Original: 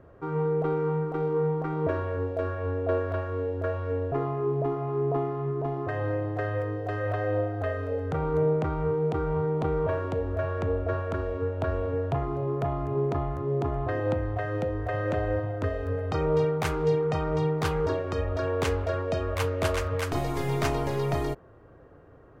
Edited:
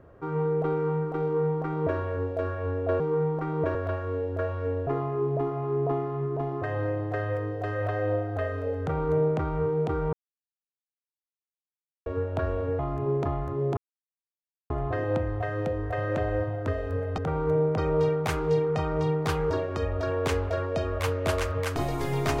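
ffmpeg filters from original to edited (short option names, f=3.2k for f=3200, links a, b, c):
-filter_complex "[0:a]asplit=9[a][b][c][d][e][f][g][h][i];[a]atrim=end=3.002[j];[b]atrim=start=1.228:end=1.982[k];[c]atrim=start=2.998:end=9.38,asetpts=PTS-STARTPTS,afade=t=out:st=6.378:d=0.004:c=hsin[l];[d]atrim=start=9.38:end=11.31,asetpts=PTS-STARTPTS,volume=0[m];[e]atrim=start=11.31:end=12.042,asetpts=PTS-STARTPTS,afade=t=in:d=0.004:c=hsin[n];[f]atrim=start=12.678:end=13.66,asetpts=PTS-STARTPTS,afade=t=out:st=0.978:d=0.004:c=hsin,apad=pad_dur=0.93[o];[g]atrim=start=13.66:end=16.142,asetpts=PTS-STARTPTS,afade=t=in:d=0.004:c=hsin[p];[h]atrim=start=8.048:end=8.652[q];[i]atrim=start=16.138[r];[j][k]acrossfade=d=0.004:c1=hsin:c2=hsin[s];[l][m][n]concat=n=3:v=0:a=1[t];[s][t]acrossfade=d=0.004:c1=hsin:c2=hsin[u];[o][p]concat=n=2:v=0:a=1[v];[u][v]acrossfade=d=0.004:c1=hsin:c2=hsin[w];[w][q]acrossfade=d=0.004:c1=hsin:c2=hsin[x];[x][r]acrossfade=d=0.004:c1=hsin:c2=hsin"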